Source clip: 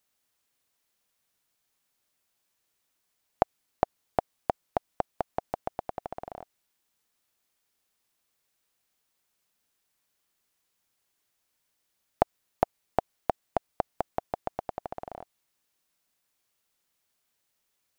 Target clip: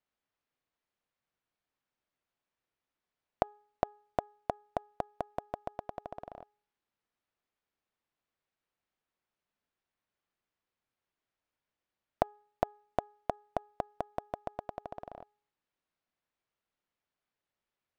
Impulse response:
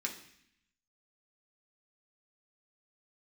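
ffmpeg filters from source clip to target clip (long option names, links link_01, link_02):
-af "bandreject=frequency=416.3:width_type=h:width=4,bandreject=frequency=832.6:width_type=h:width=4,bandreject=frequency=1248.9:width_type=h:width=4,bandreject=frequency=1665.2:width_type=h:width=4,adynamicsmooth=sensitivity=7.5:basefreq=3000,volume=-5dB"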